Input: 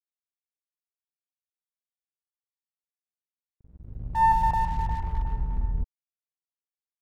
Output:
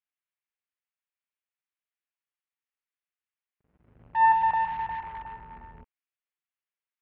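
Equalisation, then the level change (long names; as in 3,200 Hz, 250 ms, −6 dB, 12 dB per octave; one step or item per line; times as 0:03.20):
resonant band-pass 2,300 Hz, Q 0.78
low-pass filter 3,000 Hz 24 dB per octave
+6.5 dB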